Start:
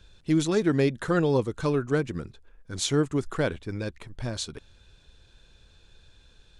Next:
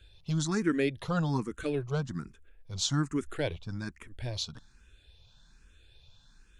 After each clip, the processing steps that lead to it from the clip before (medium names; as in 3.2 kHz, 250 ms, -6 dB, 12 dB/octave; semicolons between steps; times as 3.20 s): peaking EQ 470 Hz -5.5 dB 1.4 oct; barber-pole phaser +1.2 Hz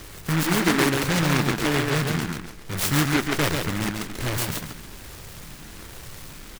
spectral levelling over time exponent 0.6; feedback delay 138 ms, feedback 26%, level -4 dB; delay time shaken by noise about 1.4 kHz, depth 0.3 ms; trim +4.5 dB